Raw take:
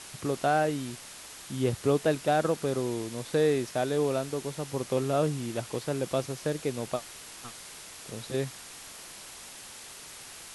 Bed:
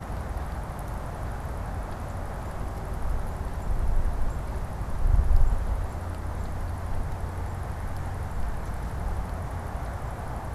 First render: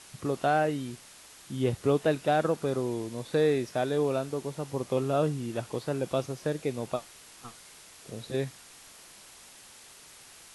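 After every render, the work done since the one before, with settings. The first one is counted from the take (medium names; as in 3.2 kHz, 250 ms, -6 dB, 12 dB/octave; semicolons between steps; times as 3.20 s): noise print and reduce 6 dB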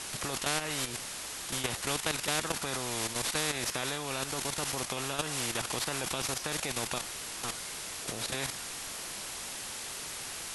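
level held to a coarse grid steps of 12 dB; spectrum-flattening compressor 4:1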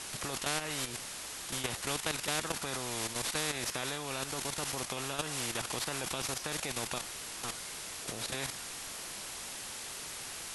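trim -2.5 dB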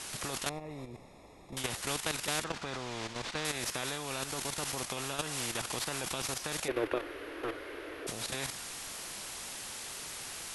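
0.49–1.57 s: boxcar filter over 29 samples; 2.44–3.45 s: distance through air 120 m; 6.68–8.07 s: FFT filter 110 Hz 0 dB, 190 Hz -21 dB, 300 Hz +15 dB, 550 Hz +11 dB, 800 Hz -2 dB, 1.6 kHz +5 dB, 3 kHz -4 dB, 7.7 kHz -28 dB, 13 kHz -12 dB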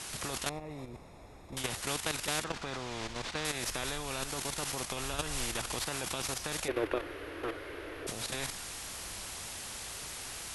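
add bed -23 dB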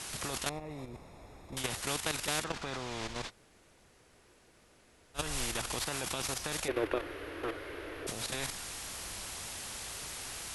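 3.28–5.17 s: room tone, crossfade 0.06 s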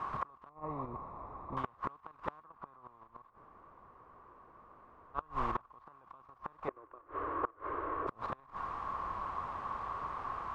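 resonant low-pass 1.1 kHz, resonance Q 12; inverted gate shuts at -22 dBFS, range -28 dB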